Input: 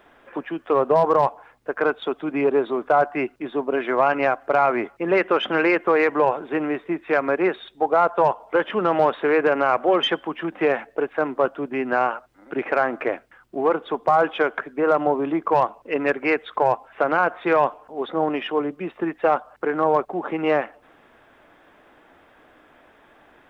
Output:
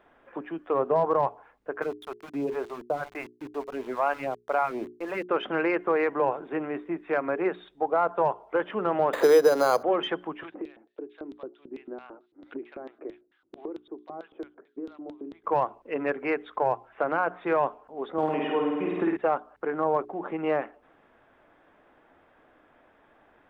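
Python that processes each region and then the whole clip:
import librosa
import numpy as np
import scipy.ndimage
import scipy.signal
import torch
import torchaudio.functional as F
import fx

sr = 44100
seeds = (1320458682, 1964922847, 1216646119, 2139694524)

y = fx.chain(x, sr, fx.phaser_stages(stages=2, low_hz=120.0, high_hz=1900.0, hz=2.1, feedback_pct=15),
    fx.sample_gate(floor_db=-34.0), at=(1.82, 5.29))
y = fx.chain(y, sr, fx.peak_eq(hz=490.0, db=9.5, octaves=0.39),
    fx.resample_bad(factor=8, down='none', up='hold'),
    fx.band_squash(depth_pct=70), at=(9.13, 9.83))
y = fx.chain(y, sr, fx.filter_lfo_bandpass(shape='square', hz=4.5, low_hz=330.0, high_hz=3700.0, q=5.4),
    fx.band_squash(depth_pct=100), at=(10.43, 15.44))
y = fx.chain(y, sr, fx.room_flutter(wall_m=8.8, rt60_s=0.98),
    fx.band_squash(depth_pct=100), at=(18.18, 19.17))
y = fx.high_shelf(y, sr, hz=3000.0, db=-10.5)
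y = fx.hum_notches(y, sr, base_hz=60, count=7)
y = y * librosa.db_to_amplitude(-5.5)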